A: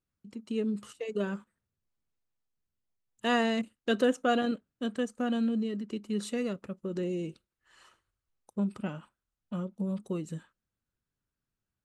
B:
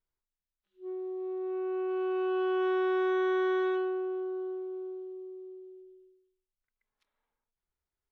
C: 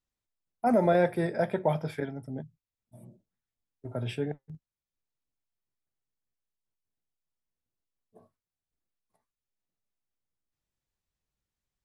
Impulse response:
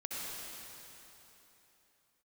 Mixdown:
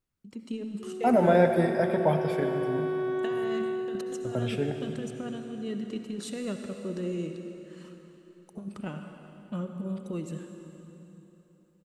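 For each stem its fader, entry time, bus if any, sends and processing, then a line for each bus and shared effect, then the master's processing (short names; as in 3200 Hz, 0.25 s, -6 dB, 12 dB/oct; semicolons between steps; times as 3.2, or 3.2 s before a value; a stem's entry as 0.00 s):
-5.0 dB, 0.00 s, send -4 dB, negative-ratio compressor -32 dBFS, ratio -0.5
-6.5 dB, 0.00 s, no send, bell 120 Hz +14 dB 2.5 oct
-0.5 dB, 0.40 s, send -5.5 dB, dry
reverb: on, RT60 3.4 s, pre-delay 58 ms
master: dry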